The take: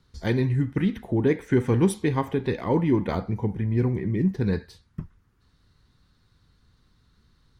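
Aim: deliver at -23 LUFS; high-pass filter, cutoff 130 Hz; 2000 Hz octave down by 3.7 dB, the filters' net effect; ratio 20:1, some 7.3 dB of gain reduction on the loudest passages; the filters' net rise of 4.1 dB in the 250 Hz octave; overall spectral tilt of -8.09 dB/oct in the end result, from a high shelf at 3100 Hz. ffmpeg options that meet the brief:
-af "highpass=130,equalizer=f=250:t=o:g=6,equalizer=f=2k:t=o:g=-3.5,highshelf=f=3.1k:g=-3,acompressor=threshold=-19dB:ratio=20,volume=3.5dB"

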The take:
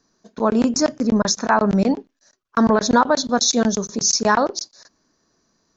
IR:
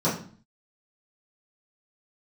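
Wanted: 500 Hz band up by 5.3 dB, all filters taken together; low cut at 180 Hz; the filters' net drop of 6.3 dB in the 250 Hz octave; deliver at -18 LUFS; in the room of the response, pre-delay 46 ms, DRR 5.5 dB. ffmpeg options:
-filter_complex "[0:a]highpass=180,equalizer=f=250:t=o:g=-7.5,equalizer=f=500:t=o:g=8.5,asplit=2[a][b];[1:a]atrim=start_sample=2205,adelay=46[c];[b][c]afir=irnorm=-1:irlink=0,volume=-19dB[d];[a][d]amix=inputs=2:normalize=0,volume=-2.5dB"

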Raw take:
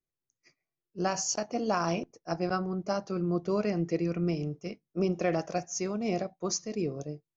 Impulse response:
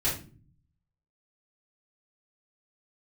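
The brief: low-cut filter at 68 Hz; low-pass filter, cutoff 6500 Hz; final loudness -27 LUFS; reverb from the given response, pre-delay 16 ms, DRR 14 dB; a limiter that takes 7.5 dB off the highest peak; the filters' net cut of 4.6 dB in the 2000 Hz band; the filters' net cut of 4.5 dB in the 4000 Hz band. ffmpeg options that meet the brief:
-filter_complex "[0:a]highpass=68,lowpass=6.5k,equalizer=f=2k:t=o:g=-5.5,equalizer=f=4k:t=o:g=-4,alimiter=level_in=0.5dB:limit=-24dB:level=0:latency=1,volume=-0.5dB,asplit=2[a][b];[1:a]atrim=start_sample=2205,adelay=16[c];[b][c]afir=irnorm=-1:irlink=0,volume=-22.5dB[d];[a][d]amix=inputs=2:normalize=0,volume=8dB"

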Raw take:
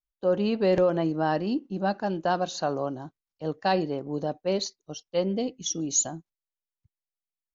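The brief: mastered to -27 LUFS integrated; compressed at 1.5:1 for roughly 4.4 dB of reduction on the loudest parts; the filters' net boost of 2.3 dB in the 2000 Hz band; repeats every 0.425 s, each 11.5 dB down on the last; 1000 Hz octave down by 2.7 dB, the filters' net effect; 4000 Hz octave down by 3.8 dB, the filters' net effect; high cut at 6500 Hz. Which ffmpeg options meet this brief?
-af "lowpass=6.5k,equalizer=f=1k:t=o:g=-5,equalizer=f=2k:t=o:g=6.5,equalizer=f=4k:t=o:g=-6,acompressor=threshold=-31dB:ratio=1.5,aecho=1:1:425|850|1275:0.266|0.0718|0.0194,volume=5dB"

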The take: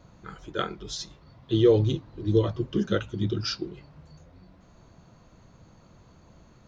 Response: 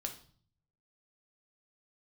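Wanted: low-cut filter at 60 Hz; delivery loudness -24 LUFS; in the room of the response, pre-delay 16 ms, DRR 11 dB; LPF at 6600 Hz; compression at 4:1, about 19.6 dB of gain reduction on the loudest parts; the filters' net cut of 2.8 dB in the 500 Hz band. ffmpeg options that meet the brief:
-filter_complex "[0:a]highpass=60,lowpass=6.6k,equalizer=f=500:t=o:g=-3.5,acompressor=threshold=-41dB:ratio=4,asplit=2[a][b];[1:a]atrim=start_sample=2205,adelay=16[c];[b][c]afir=irnorm=-1:irlink=0,volume=-10dB[d];[a][d]amix=inputs=2:normalize=0,volume=20dB"

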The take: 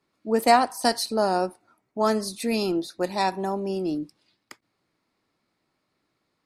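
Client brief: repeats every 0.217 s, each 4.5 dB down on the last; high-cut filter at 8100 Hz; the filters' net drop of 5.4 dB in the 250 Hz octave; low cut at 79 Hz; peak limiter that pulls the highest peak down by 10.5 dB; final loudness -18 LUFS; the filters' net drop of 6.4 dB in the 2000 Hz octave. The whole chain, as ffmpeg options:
-af "highpass=79,lowpass=8.1k,equalizer=f=250:t=o:g=-7,equalizer=f=2k:t=o:g=-8,alimiter=limit=-17.5dB:level=0:latency=1,aecho=1:1:217|434|651|868|1085|1302|1519|1736|1953:0.596|0.357|0.214|0.129|0.0772|0.0463|0.0278|0.0167|0.01,volume=10.5dB"

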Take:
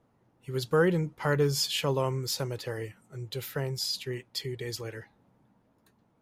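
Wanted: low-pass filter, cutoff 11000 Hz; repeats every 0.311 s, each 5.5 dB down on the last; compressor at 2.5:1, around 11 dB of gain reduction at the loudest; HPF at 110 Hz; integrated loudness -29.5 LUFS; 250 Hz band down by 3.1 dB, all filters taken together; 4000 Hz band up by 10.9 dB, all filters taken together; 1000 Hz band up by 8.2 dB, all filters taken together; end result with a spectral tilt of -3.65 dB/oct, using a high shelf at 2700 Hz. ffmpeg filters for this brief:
-af "highpass=110,lowpass=11k,equalizer=f=250:t=o:g=-6,equalizer=f=1k:t=o:g=8.5,highshelf=f=2.7k:g=9,equalizer=f=4k:t=o:g=5.5,acompressor=threshold=-32dB:ratio=2.5,aecho=1:1:311|622|933|1244|1555|1866|2177:0.531|0.281|0.149|0.079|0.0419|0.0222|0.0118,volume=2dB"

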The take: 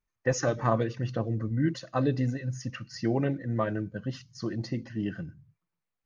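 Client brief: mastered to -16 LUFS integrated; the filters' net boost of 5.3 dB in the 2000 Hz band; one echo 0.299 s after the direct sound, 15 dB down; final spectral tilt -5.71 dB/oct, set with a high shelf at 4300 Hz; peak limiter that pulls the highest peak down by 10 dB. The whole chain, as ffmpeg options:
-af "equalizer=f=2k:t=o:g=7.5,highshelf=f=4.3k:g=-4.5,alimiter=limit=-20.5dB:level=0:latency=1,aecho=1:1:299:0.178,volume=16.5dB"

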